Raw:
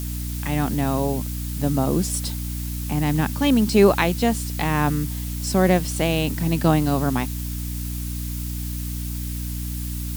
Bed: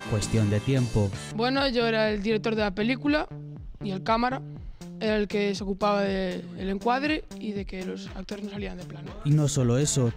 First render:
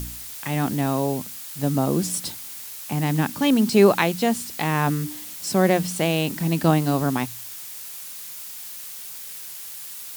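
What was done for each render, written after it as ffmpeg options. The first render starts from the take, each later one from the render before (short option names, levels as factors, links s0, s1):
-af "bandreject=f=60:t=h:w=4,bandreject=f=120:t=h:w=4,bandreject=f=180:t=h:w=4,bandreject=f=240:t=h:w=4,bandreject=f=300:t=h:w=4"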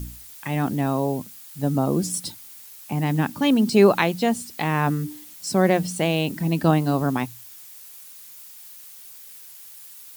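-af "afftdn=nr=9:nf=-37"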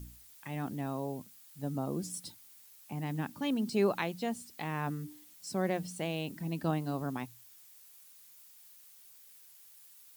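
-af "volume=0.211"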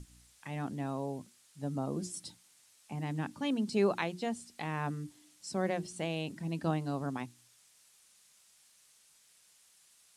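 -af "lowpass=f=9900:w=0.5412,lowpass=f=9900:w=1.3066,bandreject=f=60:t=h:w=6,bandreject=f=120:t=h:w=6,bandreject=f=180:t=h:w=6,bandreject=f=240:t=h:w=6,bandreject=f=300:t=h:w=6,bandreject=f=360:t=h:w=6"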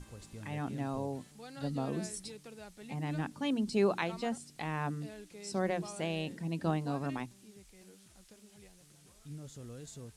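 -filter_complex "[1:a]volume=0.0631[s0];[0:a][s0]amix=inputs=2:normalize=0"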